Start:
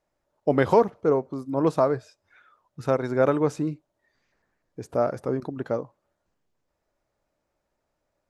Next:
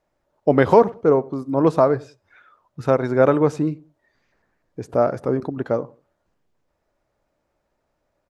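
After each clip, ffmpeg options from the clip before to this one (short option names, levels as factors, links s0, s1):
-filter_complex "[0:a]highshelf=f=4800:g=-7,asplit=2[s0][s1];[s1]adelay=94,lowpass=f=850:p=1,volume=0.0944,asplit=2[s2][s3];[s3]adelay=94,lowpass=f=850:p=1,volume=0.26[s4];[s0][s2][s4]amix=inputs=3:normalize=0,volume=1.88"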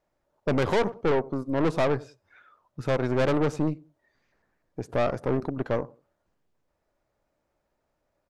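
-af "aeval=exprs='(tanh(10*val(0)+0.7)-tanh(0.7))/10':c=same"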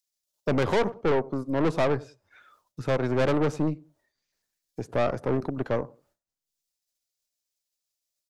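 -filter_complex "[0:a]agate=range=0.0224:threshold=0.00112:ratio=3:detection=peak,acrossover=split=120|810|3900[s0][s1][s2][s3];[s3]acompressor=mode=upward:threshold=0.00158:ratio=2.5[s4];[s0][s1][s2][s4]amix=inputs=4:normalize=0"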